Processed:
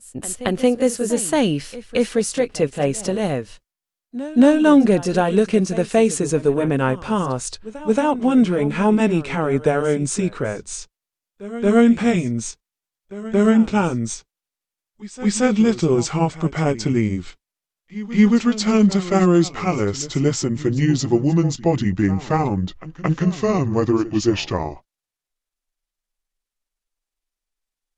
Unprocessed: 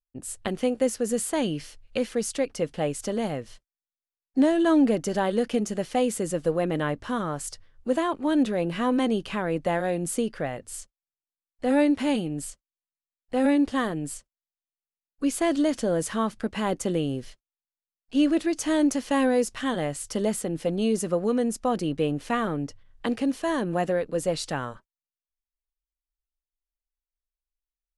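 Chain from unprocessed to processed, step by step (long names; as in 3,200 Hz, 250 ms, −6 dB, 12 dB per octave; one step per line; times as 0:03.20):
pitch glide at a constant tempo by −9 semitones starting unshifted
backwards echo 226 ms −16 dB
level +8.5 dB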